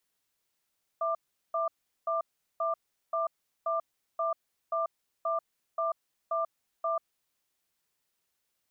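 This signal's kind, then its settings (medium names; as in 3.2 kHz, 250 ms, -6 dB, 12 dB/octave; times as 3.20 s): cadence 661 Hz, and 1.19 kHz, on 0.14 s, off 0.39 s, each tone -29.5 dBFS 6.20 s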